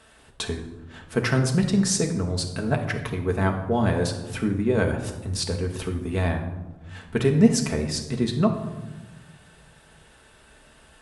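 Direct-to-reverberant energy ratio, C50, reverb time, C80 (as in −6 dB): 2.0 dB, 8.0 dB, 1.2 s, 10.5 dB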